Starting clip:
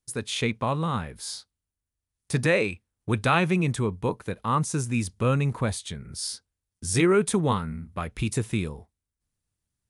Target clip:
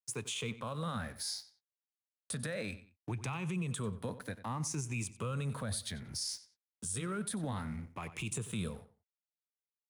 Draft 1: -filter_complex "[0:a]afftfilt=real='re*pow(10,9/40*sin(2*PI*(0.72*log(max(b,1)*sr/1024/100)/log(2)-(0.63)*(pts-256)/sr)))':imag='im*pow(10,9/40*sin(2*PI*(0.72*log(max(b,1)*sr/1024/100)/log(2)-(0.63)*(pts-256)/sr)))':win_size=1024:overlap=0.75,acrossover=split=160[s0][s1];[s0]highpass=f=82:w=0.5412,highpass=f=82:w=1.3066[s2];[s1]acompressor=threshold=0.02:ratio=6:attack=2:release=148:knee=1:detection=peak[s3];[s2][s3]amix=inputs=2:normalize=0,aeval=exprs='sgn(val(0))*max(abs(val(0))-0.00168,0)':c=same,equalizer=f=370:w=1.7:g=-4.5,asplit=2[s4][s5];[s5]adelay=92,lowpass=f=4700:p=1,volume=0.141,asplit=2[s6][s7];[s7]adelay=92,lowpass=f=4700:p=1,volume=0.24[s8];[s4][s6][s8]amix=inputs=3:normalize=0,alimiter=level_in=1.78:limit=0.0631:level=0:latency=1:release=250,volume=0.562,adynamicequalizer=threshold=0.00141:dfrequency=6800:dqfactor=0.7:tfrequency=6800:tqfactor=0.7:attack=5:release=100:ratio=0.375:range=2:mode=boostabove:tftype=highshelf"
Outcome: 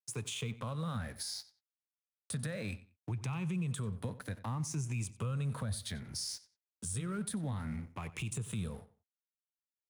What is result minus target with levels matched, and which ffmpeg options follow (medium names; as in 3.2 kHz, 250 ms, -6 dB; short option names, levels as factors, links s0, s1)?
compression: peak gain reduction +8 dB
-filter_complex "[0:a]afftfilt=real='re*pow(10,9/40*sin(2*PI*(0.72*log(max(b,1)*sr/1024/100)/log(2)-(0.63)*(pts-256)/sr)))':imag='im*pow(10,9/40*sin(2*PI*(0.72*log(max(b,1)*sr/1024/100)/log(2)-(0.63)*(pts-256)/sr)))':win_size=1024:overlap=0.75,acrossover=split=160[s0][s1];[s0]highpass=f=82:w=0.5412,highpass=f=82:w=1.3066[s2];[s1]acompressor=threshold=0.0596:ratio=6:attack=2:release=148:knee=1:detection=peak[s3];[s2][s3]amix=inputs=2:normalize=0,aeval=exprs='sgn(val(0))*max(abs(val(0))-0.00168,0)':c=same,equalizer=f=370:w=1.7:g=-4.5,asplit=2[s4][s5];[s5]adelay=92,lowpass=f=4700:p=1,volume=0.141,asplit=2[s6][s7];[s7]adelay=92,lowpass=f=4700:p=1,volume=0.24[s8];[s4][s6][s8]amix=inputs=3:normalize=0,alimiter=level_in=1.78:limit=0.0631:level=0:latency=1:release=250,volume=0.562,adynamicequalizer=threshold=0.00141:dfrequency=6800:dqfactor=0.7:tfrequency=6800:tqfactor=0.7:attack=5:release=100:ratio=0.375:range=2:mode=boostabove:tftype=highshelf"